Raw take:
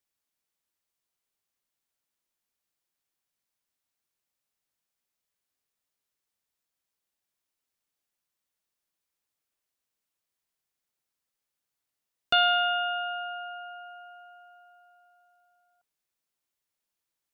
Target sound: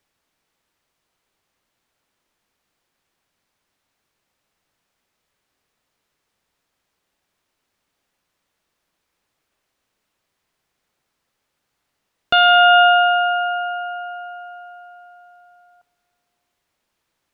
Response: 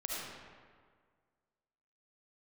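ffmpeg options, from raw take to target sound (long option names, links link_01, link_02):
-filter_complex "[0:a]lowpass=frequency=2400:poles=1,asplit=2[link_01][link_02];[1:a]atrim=start_sample=2205,adelay=53[link_03];[link_02][link_03]afir=irnorm=-1:irlink=0,volume=-19.5dB[link_04];[link_01][link_04]amix=inputs=2:normalize=0,alimiter=level_in=22.5dB:limit=-1dB:release=50:level=0:latency=1,volume=-4.5dB"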